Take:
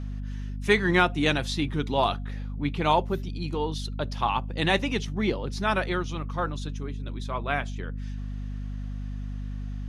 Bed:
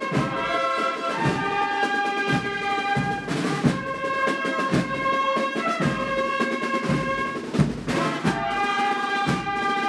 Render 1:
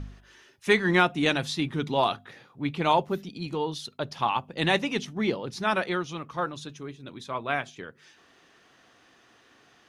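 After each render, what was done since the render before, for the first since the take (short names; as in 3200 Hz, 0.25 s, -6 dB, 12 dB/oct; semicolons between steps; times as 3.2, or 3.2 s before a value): de-hum 50 Hz, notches 5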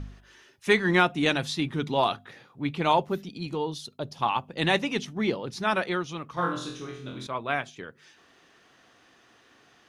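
3.46–4.21 bell 1800 Hz -0.5 dB -> -12.5 dB 1.9 oct; 6.34–7.27 flutter echo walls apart 4 m, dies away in 0.54 s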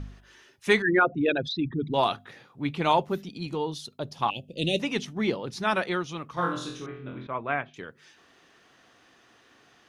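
0.82–1.94 formant sharpening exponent 3; 4.3–4.8 elliptic band-stop 580–2700 Hz, stop band 50 dB; 6.86–7.74 LPF 2500 Hz 24 dB/oct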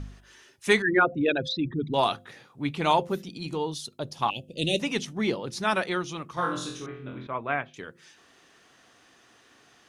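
bell 8800 Hz +7 dB 1.2 oct; de-hum 173.7 Hz, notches 3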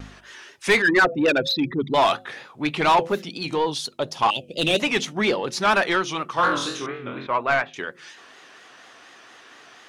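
overdrive pedal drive 19 dB, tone 3200 Hz, clips at -8.5 dBFS; vibrato 4.2 Hz 89 cents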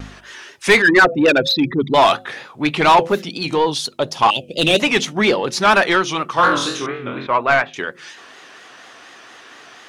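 gain +6 dB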